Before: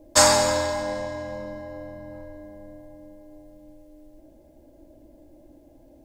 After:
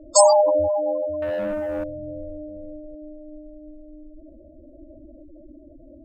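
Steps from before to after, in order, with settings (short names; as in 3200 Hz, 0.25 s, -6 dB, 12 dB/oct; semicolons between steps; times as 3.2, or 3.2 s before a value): spectral gate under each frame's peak -10 dB strong; 1.22–1.84 sample leveller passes 2; gain +7 dB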